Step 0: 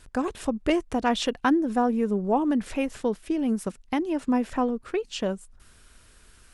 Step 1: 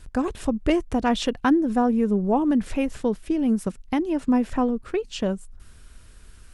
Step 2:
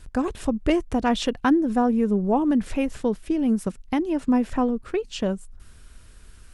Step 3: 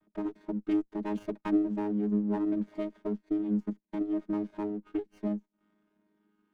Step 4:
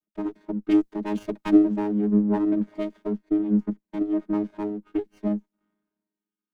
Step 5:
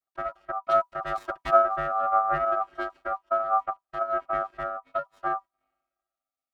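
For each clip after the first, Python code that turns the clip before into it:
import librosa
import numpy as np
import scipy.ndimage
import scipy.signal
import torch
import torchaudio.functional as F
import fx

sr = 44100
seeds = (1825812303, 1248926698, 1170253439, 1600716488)

y1 = fx.low_shelf(x, sr, hz=200.0, db=9.5)
y2 = y1
y3 = fx.chord_vocoder(y2, sr, chord='bare fifth', root=56)
y3 = fx.env_lowpass(y3, sr, base_hz=1500.0, full_db=-17.0)
y3 = fx.running_max(y3, sr, window=9)
y3 = y3 * librosa.db_to_amplitude(-7.5)
y4 = fx.band_widen(y3, sr, depth_pct=70)
y4 = y4 * librosa.db_to_amplitude(6.5)
y5 = y4 * np.sin(2.0 * np.pi * 980.0 * np.arange(len(y4)) / sr)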